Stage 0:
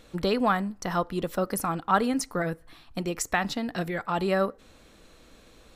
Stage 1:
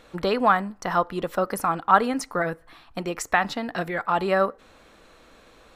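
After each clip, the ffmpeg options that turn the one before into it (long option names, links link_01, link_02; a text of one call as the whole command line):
ffmpeg -i in.wav -af "equalizer=frequency=1100:width=0.42:gain=9.5,volume=-3dB" out.wav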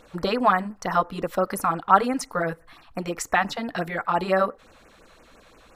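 ffmpeg -i in.wav -af "afftfilt=real='re*(1-between(b*sr/1024,270*pow(4300/270,0.5+0.5*sin(2*PI*5.8*pts/sr))/1.41,270*pow(4300/270,0.5+0.5*sin(2*PI*5.8*pts/sr))*1.41))':imag='im*(1-between(b*sr/1024,270*pow(4300/270,0.5+0.5*sin(2*PI*5.8*pts/sr))/1.41,270*pow(4300/270,0.5+0.5*sin(2*PI*5.8*pts/sr))*1.41))':win_size=1024:overlap=0.75,volume=1dB" out.wav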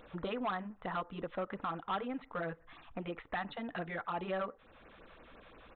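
ffmpeg -i in.wav -af "acompressor=threshold=-44dB:ratio=1.5,aresample=8000,asoftclip=type=tanh:threshold=-25.5dB,aresample=44100,volume=-3.5dB" out.wav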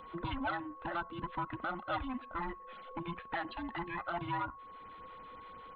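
ffmpeg -i in.wav -af "afftfilt=real='real(if(between(b,1,1008),(2*floor((b-1)/24)+1)*24-b,b),0)':imag='imag(if(between(b,1,1008),(2*floor((b-1)/24)+1)*24-b,b),0)*if(between(b,1,1008),-1,1)':win_size=2048:overlap=0.75,aeval=exprs='val(0)+0.00355*sin(2*PI*1100*n/s)':channel_layout=same" out.wav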